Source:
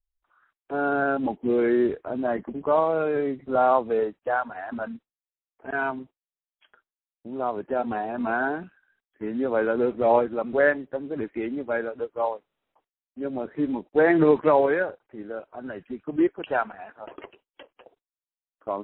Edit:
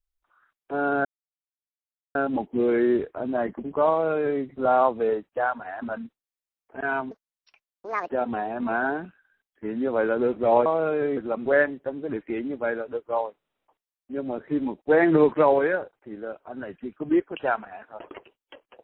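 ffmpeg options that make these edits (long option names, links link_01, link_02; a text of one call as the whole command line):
ffmpeg -i in.wav -filter_complex "[0:a]asplit=6[link_01][link_02][link_03][link_04][link_05][link_06];[link_01]atrim=end=1.05,asetpts=PTS-STARTPTS,afade=type=out:start_time=1.046:duration=0.004:curve=hsin,apad=pad_dur=1.1[link_07];[link_02]atrim=start=1.05:end=6.014,asetpts=PTS-STARTPTS,afade=type=in:duration=0.004:curve=hsin[link_08];[link_03]atrim=start=6.01:end=7.68,asetpts=PTS-STARTPTS,asetrate=74529,aresample=44100,atrim=end_sample=43578,asetpts=PTS-STARTPTS[link_09];[link_04]atrim=start=7.676:end=10.242[link_10];[link_05]atrim=start=2.798:end=3.312[link_11];[link_06]atrim=start=10.238[link_12];[link_07][link_08]concat=n=2:v=0:a=1[link_13];[link_13][link_09]acrossfade=duration=0.004:curve1=hsin:curve2=hsin[link_14];[link_14][link_10]acrossfade=duration=0.004:curve1=hsin:curve2=hsin[link_15];[link_15][link_11]acrossfade=duration=0.004:curve1=hsin:curve2=hsin[link_16];[link_16][link_12]acrossfade=duration=0.004:curve1=hsin:curve2=hsin" out.wav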